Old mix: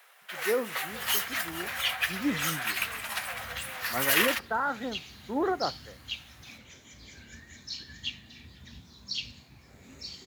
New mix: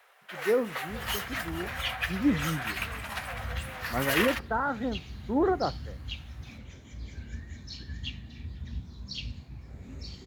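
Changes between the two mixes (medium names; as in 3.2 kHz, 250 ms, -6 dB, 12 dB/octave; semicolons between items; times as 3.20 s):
second sound: remove high-pass 100 Hz 6 dB/octave; master: add tilt EQ -2.5 dB/octave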